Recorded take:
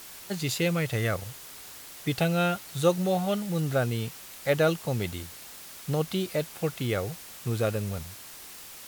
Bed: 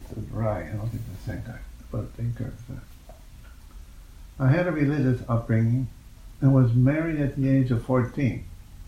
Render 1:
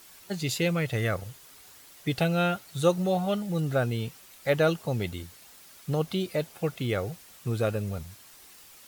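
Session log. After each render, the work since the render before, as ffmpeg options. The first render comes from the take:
ffmpeg -i in.wav -af "afftdn=noise_reduction=8:noise_floor=-45" out.wav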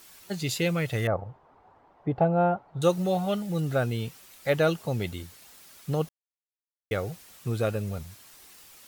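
ffmpeg -i in.wav -filter_complex "[0:a]asettb=1/sr,asplit=3[link_01][link_02][link_03];[link_01]atrim=end=1.074[link_04];[link_02]atrim=start=1.07:end=2.82,asetpts=PTS-STARTPTS,afade=type=in:duration=0.004:curve=qsin,afade=type=out:start_time=1.746:duration=0.004:curve=qsin,lowpass=frequency=860:width_type=q:width=2.9[link_05];[link_03]atrim=start=2.816[link_06];[link_04][link_05]acrossfade=duration=0.004:curve1=hsin:curve2=qsin[link_07];[link_07][link_06]acrossfade=duration=0.004:curve1=qsin:curve2=hsin,asplit=3[link_08][link_09][link_10];[link_08]atrim=end=6.09,asetpts=PTS-STARTPTS,afade=type=out:start_time=6.086:duration=0.004:curve=hsin[link_11];[link_09]atrim=start=6.09:end=6.91,asetpts=PTS-STARTPTS,volume=0[link_12];[link_10]atrim=start=6.91,asetpts=PTS-STARTPTS,afade=type=in:duration=0.004:curve=hsin[link_13];[link_11][link_12][link_13]concat=n=3:v=0:a=1" out.wav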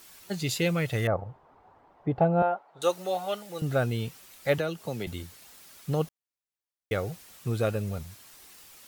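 ffmpeg -i in.wav -filter_complex "[0:a]asettb=1/sr,asplit=3[link_01][link_02][link_03];[link_01]atrim=end=2.424[link_04];[link_02]atrim=start=2.42:end=3.62,asetpts=PTS-STARTPTS,afade=type=in:duration=0.004:curve=qsin,afade=type=out:start_time=1.196:duration=0.004:curve=qsin,highpass=490[link_05];[link_03]atrim=start=3.616[link_06];[link_04][link_05]acrossfade=duration=0.004:curve1=hsin:curve2=qsin[link_07];[link_07][link_06]acrossfade=duration=0.004:curve1=qsin:curve2=hsin,asettb=1/sr,asplit=3[link_08][link_09][link_10];[link_08]atrim=end=4.584[link_11];[link_09]atrim=start=4.58:end=5.07,asetpts=PTS-STARTPTS,afade=type=in:duration=0.004:curve=qsin,afade=type=out:start_time=0.486:duration=0.004:curve=qsin,acrossover=split=170|630|1300[link_12][link_13][link_14][link_15];[link_12]acompressor=threshold=-47dB:ratio=3[link_16];[link_13]acompressor=threshold=-32dB:ratio=3[link_17];[link_14]acompressor=threshold=-42dB:ratio=3[link_18];[link_15]acompressor=threshold=-40dB:ratio=3[link_19];[link_16][link_17][link_18][link_19]amix=inputs=4:normalize=0[link_20];[link_10]atrim=start=5.066[link_21];[link_11][link_20]acrossfade=duration=0.004:curve1=hsin:curve2=qsin[link_22];[link_22][link_21]acrossfade=duration=0.004:curve1=qsin:curve2=hsin" out.wav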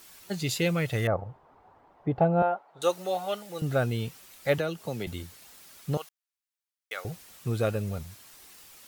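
ffmpeg -i in.wav -filter_complex "[0:a]asettb=1/sr,asplit=3[link_01][link_02][link_03];[link_01]atrim=end=5.974[link_04];[link_02]atrim=start=5.97:end=7.05,asetpts=PTS-STARTPTS,afade=type=in:duration=0.004:curve=qsin,afade=type=out:start_time=1.076:duration=0.004:curve=qsin,highpass=1100[link_05];[link_03]atrim=start=7.046[link_06];[link_04][link_05]acrossfade=duration=0.004:curve1=hsin:curve2=qsin[link_07];[link_07][link_06]acrossfade=duration=0.004:curve1=qsin:curve2=hsin" out.wav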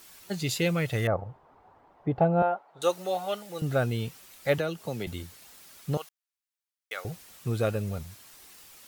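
ffmpeg -i in.wav -af anull out.wav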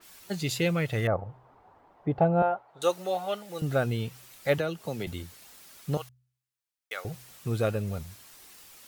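ffmpeg -i in.wav -af "bandreject=frequency=63.08:width_type=h:width=4,bandreject=frequency=126.16:width_type=h:width=4,adynamicequalizer=threshold=0.00501:dfrequency=4000:dqfactor=0.7:tfrequency=4000:tqfactor=0.7:attack=5:release=100:ratio=0.375:range=3:mode=cutabove:tftype=highshelf" out.wav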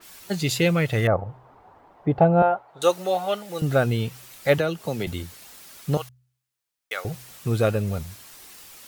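ffmpeg -i in.wav -af "volume=6dB" out.wav

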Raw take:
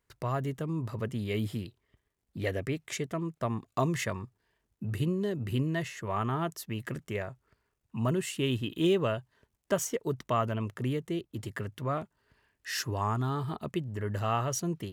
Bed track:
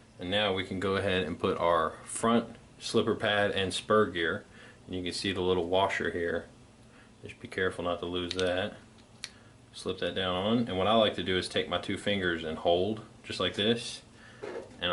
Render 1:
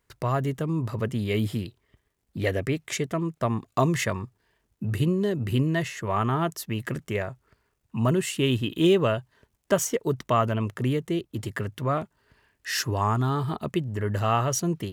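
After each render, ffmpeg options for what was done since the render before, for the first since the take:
ffmpeg -i in.wav -af "volume=6dB" out.wav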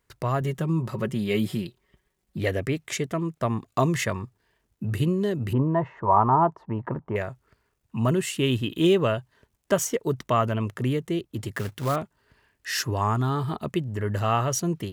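ffmpeg -i in.wav -filter_complex "[0:a]asettb=1/sr,asplit=3[link_01][link_02][link_03];[link_01]atrim=end=0.414[link_04];[link_02]atrim=start=0.41:end=2.39,asetpts=PTS-STARTPTS,afade=type=in:duration=0.004:curve=qsin,afade=type=out:start_time=1.976:duration=0.004:curve=qsin,aecho=1:1:5.4:0.59,atrim=end_sample=87318[link_05];[link_03]atrim=start=2.386[link_06];[link_04][link_05]acrossfade=duration=0.004:curve1=hsin:curve2=qsin[link_07];[link_07][link_06]acrossfade=duration=0.004:curve1=qsin:curve2=hsin,asettb=1/sr,asplit=3[link_08][link_09][link_10];[link_08]atrim=end=5.534[link_11];[link_09]atrim=start=5.53:end=7.16,asetpts=PTS-STARTPTS,afade=type=in:duration=0.004:curve=qsin,afade=type=out:start_time=1.626:duration=0.004:curve=qsin,lowpass=frequency=930:width_type=q:width=5.7[link_12];[link_10]atrim=start=7.156[link_13];[link_11][link_12]acrossfade=duration=0.004:curve1=hsin:curve2=qsin[link_14];[link_14][link_13]acrossfade=duration=0.004:curve1=qsin:curve2=hsin,asettb=1/sr,asplit=3[link_15][link_16][link_17];[link_15]atrim=end=11.544[link_18];[link_16]atrim=start=11.54:end=11.96,asetpts=PTS-STARTPTS,afade=type=in:duration=0.004:curve=qsin,afade=type=out:start_time=0.416:duration=0.004:curve=qsin,acrusher=bits=3:mode=log:mix=0:aa=0.000001[link_19];[link_17]atrim=start=11.956[link_20];[link_18][link_19]acrossfade=duration=0.004:curve1=hsin:curve2=qsin[link_21];[link_21][link_20]acrossfade=duration=0.004:curve1=qsin:curve2=hsin" out.wav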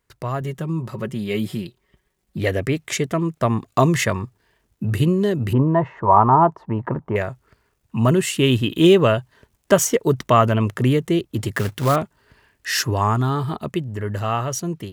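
ffmpeg -i in.wav -af "dynaudnorm=framelen=370:gausssize=13:maxgain=11.5dB" out.wav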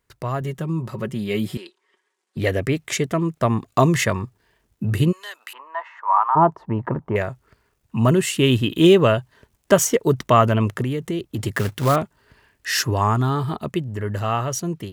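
ffmpeg -i in.wav -filter_complex "[0:a]asettb=1/sr,asplit=3[link_01][link_02][link_03];[link_01]atrim=end=1.574[link_04];[link_02]atrim=start=1.57:end=2.37,asetpts=PTS-STARTPTS,afade=type=in:duration=0.004:curve=qsin,afade=type=out:start_time=0.796:duration=0.004:curve=qsin,highpass=frequency=370:width=0.5412,highpass=frequency=370:width=1.3066,equalizer=frequency=620:width_type=q:width=4:gain=-10,equalizer=frequency=1000:width_type=q:width=4:gain=5,equalizer=frequency=1600:width_type=q:width=4:gain=3,lowpass=frequency=9500:width=0.5412,lowpass=frequency=9500:width=1.3066[link_05];[link_03]atrim=start=2.366[link_06];[link_04][link_05]acrossfade=duration=0.004:curve1=hsin:curve2=qsin[link_07];[link_07][link_06]acrossfade=duration=0.004:curve1=qsin:curve2=hsin,asplit=3[link_08][link_09][link_10];[link_08]afade=type=out:start_time=5.11:duration=0.02[link_11];[link_09]highpass=frequency=990:width=0.5412,highpass=frequency=990:width=1.3066,afade=type=in:start_time=5.11:duration=0.02,afade=type=out:start_time=6.35:duration=0.02[link_12];[link_10]afade=type=in:start_time=6.35:duration=0.02[link_13];[link_11][link_12][link_13]amix=inputs=3:normalize=0,asettb=1/sr,asplit=3[link_14][link_15][link_16];[link_14]atrim=end=10.814[link_17];[link_15]atrim=start=10.81:end=11.41,asetpts=PTS-STARTPTS,afade=type=in:duration=0.004:curve=qsin,afade=type=out:start_time=0.596:duration=0.004:curve=qsin,acompressor=threshold=-20dB:ratio=10:attack=3.2:release=140:knee=1:detection=peak[link_18];[link_16]atrim=start=11.406[link_19];[link_17][link_18]acrossfade=duration=0.004:curve1=hsin:curve2=qsin[link_20];[link_20][link_19]acrossfade=duration=0.004:curve1=qsin:curve2=hsin" out.wav

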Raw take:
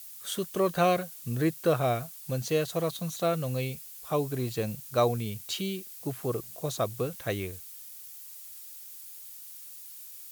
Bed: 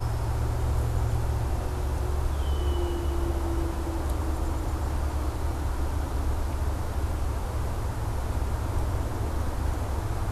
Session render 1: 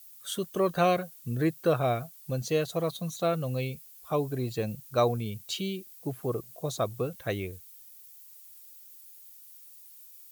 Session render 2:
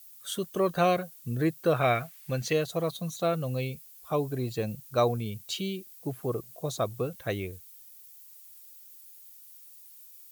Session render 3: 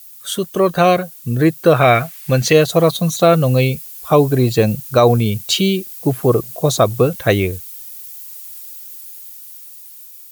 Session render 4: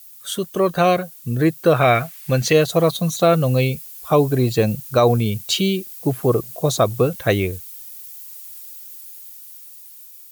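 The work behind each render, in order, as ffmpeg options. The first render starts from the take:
ffmpeg -i in.wav -af "afftdn=noise_reduction=9:noise_floor=-46" out.wav
ffmpeg -i in.wav -filter_complex "[0:a]asettb=1/sr,asplit=3[link_01][link_02][link_03];[link_01]atrim=end=1.764[link_04];[link_02]atrim=start=1.76:end=2.53,asetpts=PTS-STARTPTS,afade=type=in:duration=0.004:curve=qsin,afade=type=out:start_time=0.766:duration=0.004:curve=qsin,equalizer=frequency=2000:width=0.95:gain=12.5[link_05];[link_03]atrim=start=2.526[link_06];[link_04][link_05]acrossfade=duration=0.004:curve1=hsin:curve2=qsin[link_07];[link_07][link_06]acrossfade=duration=0.004:curve1=qsin:curve2=hsin" out.wav
ffmpeg -i in.wav -af "dynaudnorm=framelen=570:gausssize=7:maxgain=6dB,alimiter=level_in=11.5dB:limit=-1dB:release=50:level=0:latency=1" out.wav
ffmpeg -i in.wav -af "volume=-3.5dB" out.wav

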